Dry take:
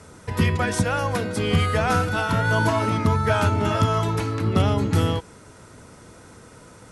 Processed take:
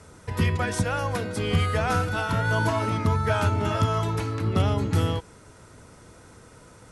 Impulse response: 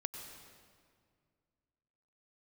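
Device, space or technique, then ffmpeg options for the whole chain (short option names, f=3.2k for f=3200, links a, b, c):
low shelf boost with a cut just above: -af "lowshelf=f=64:g=5.5,equalizer=f=220:t=o:w=0.77:g=-2,volume=-3.5dB"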